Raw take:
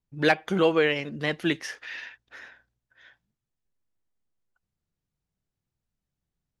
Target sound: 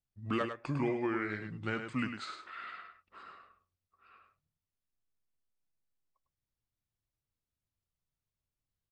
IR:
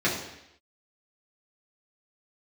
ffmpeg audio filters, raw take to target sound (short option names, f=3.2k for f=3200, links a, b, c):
-af "acompressor=threshold=-22dB:ratio=5,aecho=1:1:76:0.422,asetrate=32667,aresample=44100,volume=-7.5dB"